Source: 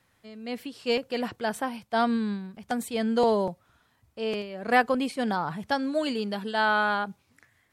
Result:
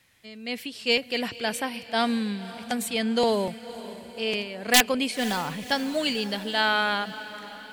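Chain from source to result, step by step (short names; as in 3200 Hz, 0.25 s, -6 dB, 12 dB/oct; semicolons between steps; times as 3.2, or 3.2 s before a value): wrapped overs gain 12 dB; resonant high shelf 1700 Hz +7 dB, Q 1.5; diffused feedback echo 0.537 s, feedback 55%, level -15.5 dB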